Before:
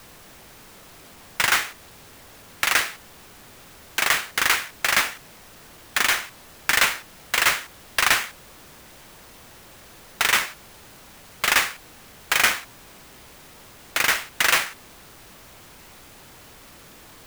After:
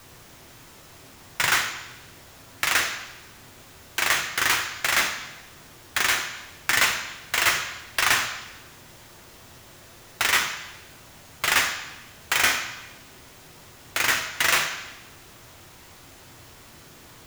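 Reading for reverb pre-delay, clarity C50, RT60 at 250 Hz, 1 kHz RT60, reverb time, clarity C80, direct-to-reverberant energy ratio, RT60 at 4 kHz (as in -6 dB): 3 ms, 7.5 dB, 0.90 s, 1.0 s, 0.95 s, 10.0 dB, 3.5 dB, 1.0 s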